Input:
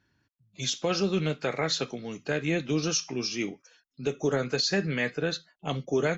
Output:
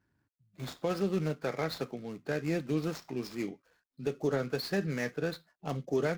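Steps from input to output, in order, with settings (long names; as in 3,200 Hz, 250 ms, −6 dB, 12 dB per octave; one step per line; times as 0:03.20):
running median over 15 samples
level −3.5 dB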